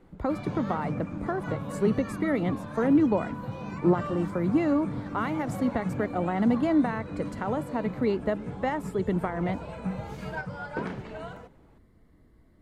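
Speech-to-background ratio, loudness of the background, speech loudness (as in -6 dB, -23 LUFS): 7.5 dB, -36.0 LUFS, -28.5 LUFS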